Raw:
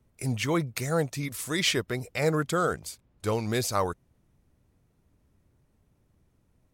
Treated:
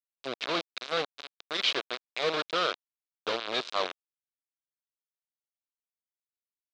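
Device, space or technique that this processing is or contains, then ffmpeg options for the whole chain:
hand-held game console: -af "acrusher=bits=3:mix=0:aa=0.000001,highpass=440,equalizer=frequency=860:width_type=q:width=4:gain=-8,equalizer=frequency=1900:width_type=q:width=4:gain=-6,equalizer=frequency=3800:width_type=q:width=4:gain=6,lowpass=frequency=4500:width=0.5412,lowpass=frequency=4500:width=1.3066,volume=-1.5dB"

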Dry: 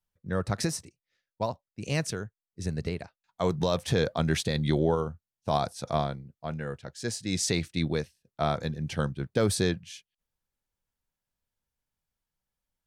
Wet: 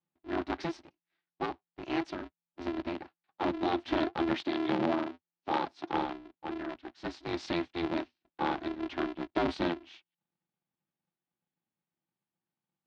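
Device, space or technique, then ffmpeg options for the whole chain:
ring modulator pedal into a guitar cabinet: -filter_complex "[0:a]aeval=exprs='val(0)*sgn(sin(2*PI*170*n/s))':channel_layout=same,highpass=92,equalizer=frequency=94:width_type=q:width=4:gain=-7,equalizer=frequency=340:width_type=q:width=4:gain=8,equalizer=frequency=480:width_type=q:width=4:gain=-7,equalizer=frequency=820:width_type=q:width=4:gain=5,lowpass=frequency=3900:width=0.5412,lowpass=frequency=3900:width=1.3066,asettb=1/sr,asplit=3[link_01][link_02][link_03];[link_01]atrim=end=4.344[link_04];[link_02]atrim=start=4.34:end=5.9,asetpts=PTS-STARTPTS,afade=type=in:duration=0.004:curve=qsin,afade=type=out:start_time=1.556:duration=0.004:curve=qsin,highpass=120[link_05];[link_03]atrim=start=5.896[link_06];[link_04][link_05]acrossfade=duration=0.004:curve1=hsin:curve2=qsin[link_07];[link_07][link_06]acrossfade=duration=0.004:curve1=qsin:curve2=hsin,volume=-5.5dB"

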